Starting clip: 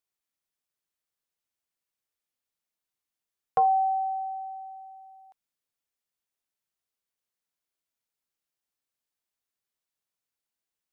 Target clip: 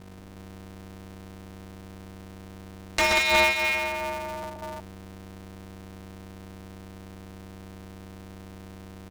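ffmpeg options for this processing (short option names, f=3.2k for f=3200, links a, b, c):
-filter_complex "[0:a]atempo=1.2,aeval=exprs='0.158*(cos(1*acos(clip(val(0)/0.158,-1,1)))-cos(1*PI/2))+0.0631*(cos(7*acos(clip(val(0)/0.158,-1,1)))-cos(7*PI/2))':c=same,aemphasis=mode=reproduction:type=riaa,acrossover=split=300[a][b];[b]acompressor=threshold=-30dB:ratio=5[c];[a][c]amix=inputs=2:normalize=0,aeval=exprs='val(0)+0.000708*(sin(2*PI*50*n/s)+sin(2*PI*2*50*n/s)/2+sin(2*PI*3*50*n/s)/3+sin(2*PI*4*50*n/s)/4+sin(2*PI*5*50*n/s)/5)':c=same,aeval=exprs='0.112*sin(PI/2*3.98*val(0)/0.112)':c=same,equalizer=f=860:t=o:w=0.77:g=-2.5,asplit=2[d][e];[e]aecho=0:1:62|126|187|192|365:0.299|0.562|0.501|0.188|0.501[f];[d][f]amix=inputs=2:normalize=0,aeval=exprs='val(0)*sgn(sin(2*PI*140*n/s))':c=same,volume=1.5dB"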